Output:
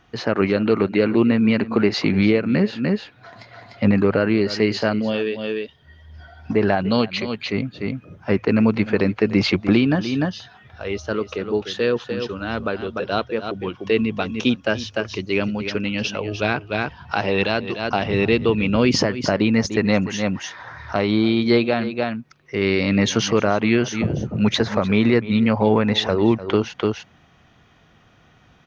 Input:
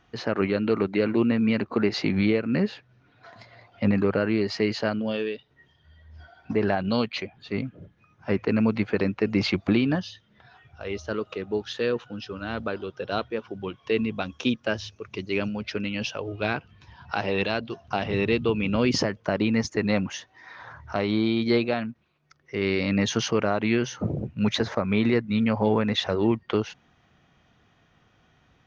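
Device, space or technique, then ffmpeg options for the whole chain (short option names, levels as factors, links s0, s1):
ducked delay: -filter_complex "[0:a]asplit=3[s0][s1][s2];[s1]adelay=298,volume=0.794[s3];[s2]apad=whole_len=1277464[s4];[s3][s4]sidechaincompress=threshold=0.0141:ratio=12:attack=5:release=155[s5];[s0][s5]amix=inputs=2:normalize=0,volume=1.88"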